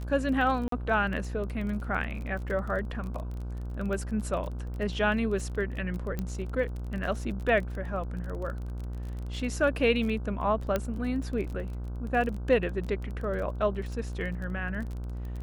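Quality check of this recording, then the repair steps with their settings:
buzz 60 Hz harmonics 26 -35 dBFS
crackle 24/s -35 dBFS
0.68–0.72 gap 43 ms
6.19 pop -19 dBFS
10.76 pop -14 dBFS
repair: de-click; de-hum 60 Hz, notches 26; interpolate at 0.68, 43 ms

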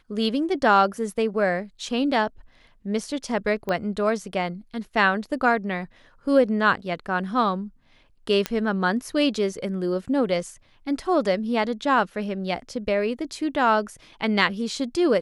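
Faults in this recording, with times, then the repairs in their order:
3.69 pop -15 dBFS
8.46 pop -9 dBFS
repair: de-click

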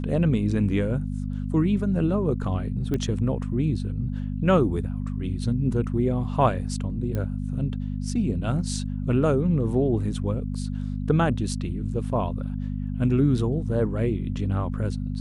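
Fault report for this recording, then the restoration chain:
hum 50 Hz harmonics 5 -29 dBFS
2.94 pop -16 dBFS
7.15 pop -18 dBFS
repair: de-click; de-hum 50 Hz, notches 5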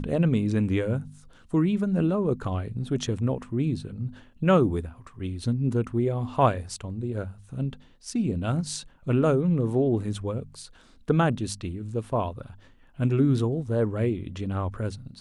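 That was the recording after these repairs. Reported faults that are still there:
none

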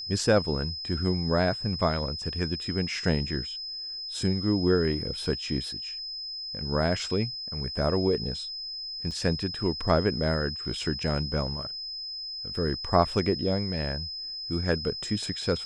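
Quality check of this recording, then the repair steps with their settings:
tone 5100 Hz -34 dBFS
9.11 gap 4.1 ms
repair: notch 5100 Hz, Q 30; interpolate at 9.11, 4.1 ms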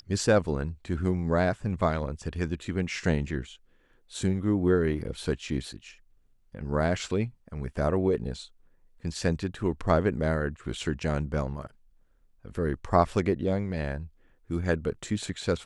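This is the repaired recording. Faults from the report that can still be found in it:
none

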